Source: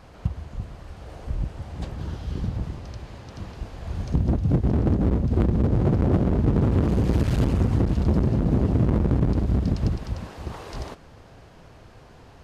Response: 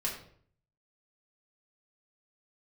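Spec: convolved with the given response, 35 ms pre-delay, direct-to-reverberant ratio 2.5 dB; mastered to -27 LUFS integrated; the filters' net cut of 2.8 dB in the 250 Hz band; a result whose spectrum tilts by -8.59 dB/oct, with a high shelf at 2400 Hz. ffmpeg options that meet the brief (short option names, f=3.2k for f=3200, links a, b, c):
-filter_complex "[0:a]equalizer=f=250:t=o:g=-4,highshelf=f=2.4k:g=7,asplit=2[a][b];[1:a]atrim=start_sample=2205,adelay=35[c];[b][c]afir=irnorm=-1:irlink=0,volume=-6.5dB[d];[a][d]amix=inputs=2:normalize=0,volume=-4dB"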